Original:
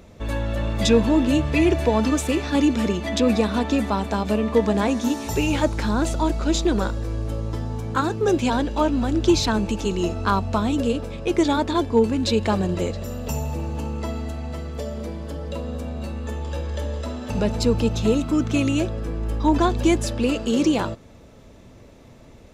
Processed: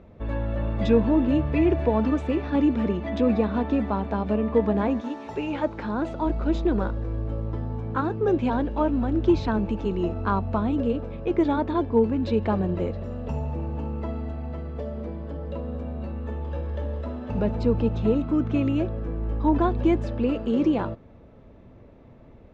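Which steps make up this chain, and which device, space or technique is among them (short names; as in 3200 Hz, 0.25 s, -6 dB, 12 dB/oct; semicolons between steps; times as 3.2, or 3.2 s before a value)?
phone in a pocket (LPF 3100 Hz 12 dB/oct; high shelf 2200 Hz -11.5 dB); 5–6.25 HPF 620 Hz -> 170 Hz 6 dB/oct; gain -2 dB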